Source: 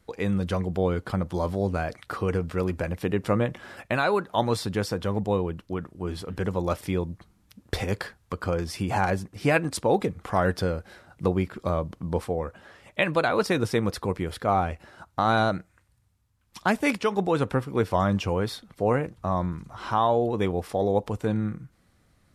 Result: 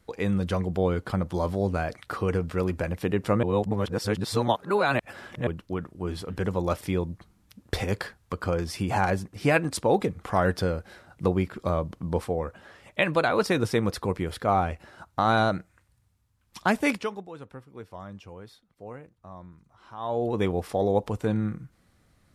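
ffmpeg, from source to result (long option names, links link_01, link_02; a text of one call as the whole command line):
ffmpeg -i in.wav -filter_complex "[0:a]asplit=5[link_01][link_02][link_03][link_04][link_05];[link_01]atrim=end=3.432[link_06];[link_02]atrim=start=3.428:end=5.472,asetpts=PTS-STARTPTS,areverse[link_07];[link_03]atrim=start=5.468:end=17.23,asetpts=PTS-STARTPTS,afade=type=out:start_time=11.392:duration=0.37:silence=0.125893[link_08];[link_04]atrim=start=17.23:end=19.97,asetpts=PTS-STARTPTS,volume=-18dB[link_09];[link_05]atrim=start=19.97,asetpts=PTS-STARTPTS,afade=type=in:duration=0.37:silence=0.125893[link_10];[link_06][link_07]acrossfade=duration=0.004:curve1=hsin:curve2=hsin[link_11];[link_08][link_09][link_10]concat=n=3:v=0:a=1[link_12];[link_11][link_12]acrossfade=duration=0.004:curve1=hsin:curve2=hsin" out.wav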